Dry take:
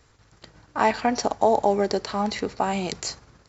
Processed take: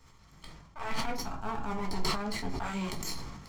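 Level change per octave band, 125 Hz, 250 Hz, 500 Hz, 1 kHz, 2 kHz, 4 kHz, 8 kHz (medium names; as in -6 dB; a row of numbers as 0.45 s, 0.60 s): -3.0 dB, -9.0 dB, -17.5 dB, -13.0 dB, -7.5 dB, -4.5 dB, no reading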